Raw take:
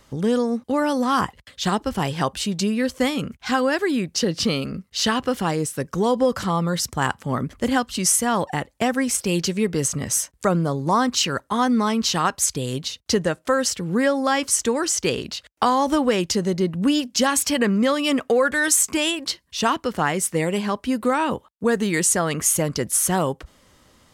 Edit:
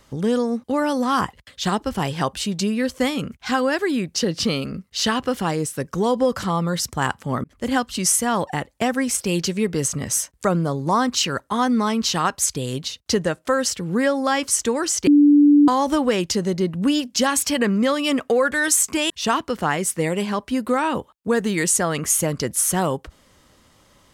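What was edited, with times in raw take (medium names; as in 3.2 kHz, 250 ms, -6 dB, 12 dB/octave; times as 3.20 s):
7.44–7.74 s: fade in
15.07–15.68 s: bleep 291 Hz -9 dBFS
19.10–19.46 s: delete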